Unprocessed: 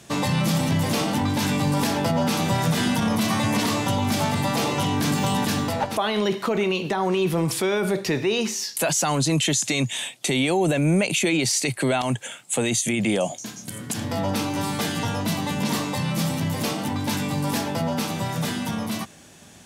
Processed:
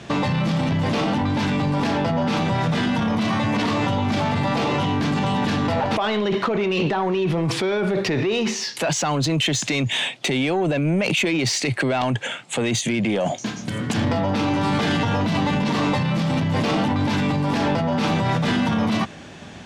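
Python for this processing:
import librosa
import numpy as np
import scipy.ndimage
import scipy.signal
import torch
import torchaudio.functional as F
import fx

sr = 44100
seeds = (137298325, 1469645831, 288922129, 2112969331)

p1 = scipy.signal.sosfilt(scipy.signal.butter(2, 3500.0, 'lowpass', fs=sr, output='sos'), x)
p2 = fx.over_compress(p1, sr, threshold_db=-28.0, ratio=-0.5)
p3 = p1 + (p2 * 10.0 ** (2.0 / 20.0))
y = 10.0 ** (-13.5 / 20.0) * np.tanh(p3 / 10.0 ** (-13.5 / 20.0))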